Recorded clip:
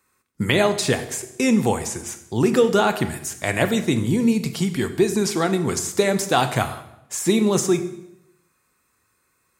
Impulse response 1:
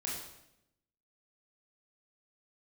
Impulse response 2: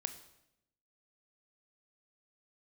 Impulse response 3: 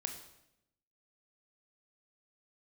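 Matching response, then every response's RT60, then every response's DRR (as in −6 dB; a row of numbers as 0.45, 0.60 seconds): 2; 0.80, 0.80, 0.80 seconds; −4.5, 9.0, 4.5 decibels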